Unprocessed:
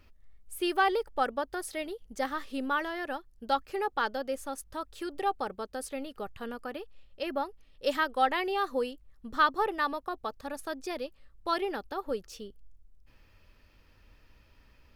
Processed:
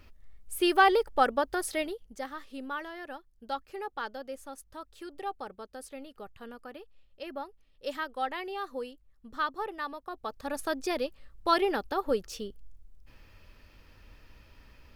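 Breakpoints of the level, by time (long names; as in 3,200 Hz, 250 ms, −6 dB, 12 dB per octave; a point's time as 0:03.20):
0:01.80 +4.5 dB
0:02.24 −6.5 dB
0:09.99 −6.5 dB
0:10.59 +5 dB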